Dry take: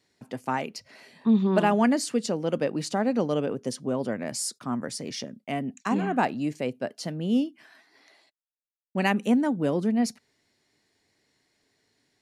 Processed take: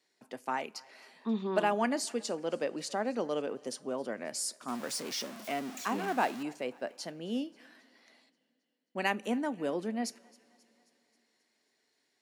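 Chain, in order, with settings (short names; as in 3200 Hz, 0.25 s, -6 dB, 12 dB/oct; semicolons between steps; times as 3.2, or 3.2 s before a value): 4.68–6.43 zero-crossing step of -32 dBFS; Bessel high-pass 380 Hz, order 2; thinning echo 0.267 s, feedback 58%, high-pass 560 Hz, level -23.5 dB; two-slope reverb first 0.26 s, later 3.4 s, from -20 dB, DRR 17.5 dB; gain -4.5 dB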